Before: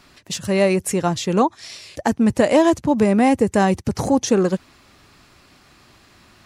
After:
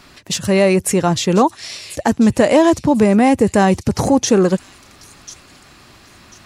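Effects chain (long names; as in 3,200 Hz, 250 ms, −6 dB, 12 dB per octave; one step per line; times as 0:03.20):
in parallel at +0.5 dB: brickwall limiter −14.5 dBFS, peak gain reduction 10.5 dB
on the sum: delay with a high-pass on its return 1,043 ms, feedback 31%, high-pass 4,000 Hz, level −13.5 dB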